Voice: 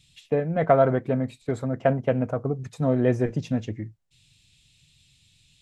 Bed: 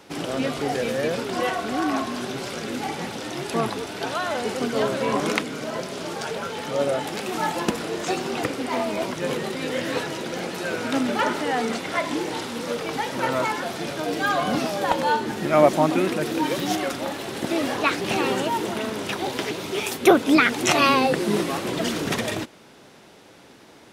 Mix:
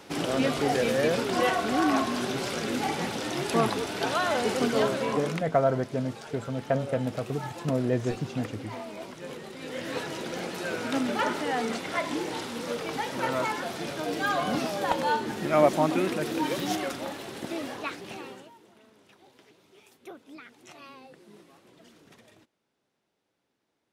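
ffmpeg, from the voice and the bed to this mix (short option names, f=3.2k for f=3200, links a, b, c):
-filter_complex "[0:a]adelay=4850,volume=-5dB[a];[1:a]volume=9dB,afade=t=out:st=4.67:d=0.71:silence=0.211349,afade=t=in:st=9.51:d=0.68:silence=0.354813,afade=t=out:st=16.68:d=1.86:silence=0.0530884[b];[a][b]amix=inputs=2:normalize=0"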